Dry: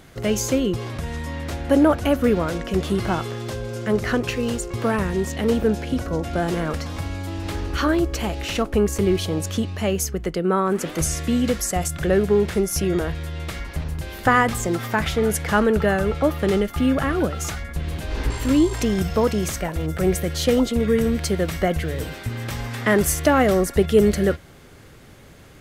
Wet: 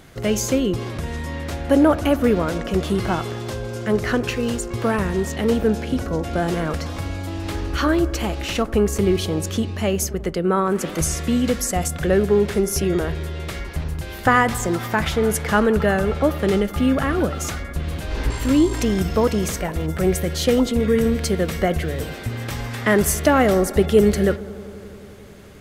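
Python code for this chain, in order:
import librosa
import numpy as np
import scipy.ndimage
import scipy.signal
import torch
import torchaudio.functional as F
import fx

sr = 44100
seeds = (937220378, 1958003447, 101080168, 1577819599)

y = fx.echo_bbd(x, sr, ms=88, stages=1024, feedback_pct=85, wet_db=-20.5)
y = y * librosa.db_to_amplitude(1.0)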